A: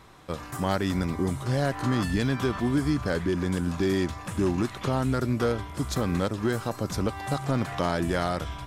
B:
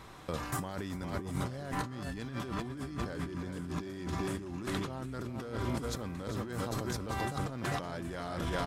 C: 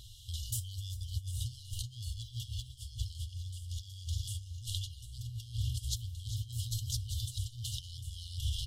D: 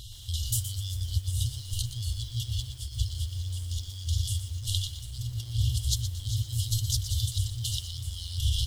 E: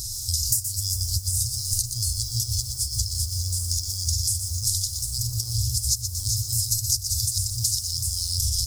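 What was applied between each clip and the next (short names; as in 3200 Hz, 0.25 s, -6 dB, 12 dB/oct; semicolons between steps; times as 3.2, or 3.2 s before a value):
on a send: feedback echo 0.4 s, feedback 55%, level -9 dB; on the sum: negative-ratio compressor -33 dBFS, ratio -1; gain -4.5 dB
FFT band-reject 120–2800 Hz; gain +5 dB
lo-fi delay 0.12 s, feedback 35%, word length 9-bit, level -10 dB; gain +8 dB
EQ curve 1300 Hz 0 dB, 3100 Hz -22 dB, 5000 Hz +15 dB; compressor 5:1, threshold -27 dBFS, peak gain reduction 14.5 dB; gain +5.5 dB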